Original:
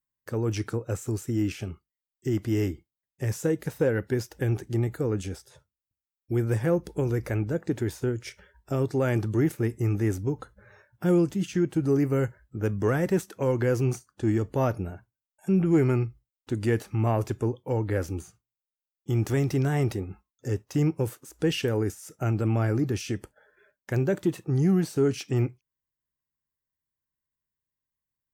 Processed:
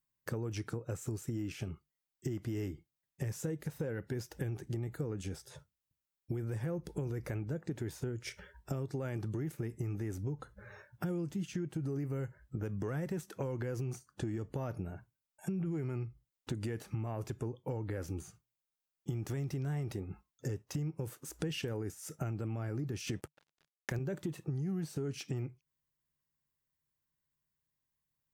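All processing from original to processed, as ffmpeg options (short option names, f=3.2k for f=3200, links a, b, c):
-filter_complex "[0:a]asettb=1/sr,asplit=3[a][b][c];[a]atrim=end=23.074[d];[b]atrim=start=23.07:end=23.99,asetpts=PTS-STARTPTS,afade=t=in:d=0.004:c=qsin,afade=t=out:st=0.916:d=0.004:c=qsin,highpass=f=56:w=0.5412,highpass=f=56:w=1.3066,acontrast=63,aeval=exprs='sgn(val(0))*max(abs(val(0))-0.00422,0)':c=same[e];[c]atrim=start=23.986[f];[d][e]acrossfade=d=0.004:c1=hsin:c2=qsin[g];[g][f]acrossfade=d=0.004:c1=qsin:c2=hsin,equalizer=f=150:t=o:w=0.37:g=7.5,alimiter=limit=-18dB:level=0:latency=1:release=68,acompressor=threshold=-37dB:ratio=5,volume=1.5dB"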